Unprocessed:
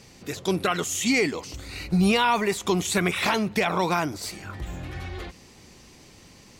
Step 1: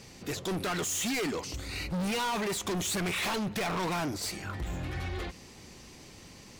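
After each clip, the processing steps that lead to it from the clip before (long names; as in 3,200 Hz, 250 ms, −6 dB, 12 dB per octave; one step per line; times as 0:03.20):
hard clipping −29.5 dBFS, distortion −4 dB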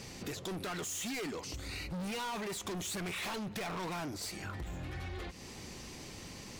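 downward compressor 6 to 1, threshold −42 dBFS, peak gain reduction 10.5 dB
level +3 dB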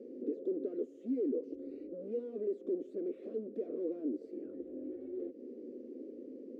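elliptic band-pass filter 250–520 Hz, stop band 40 dB
level +8 dB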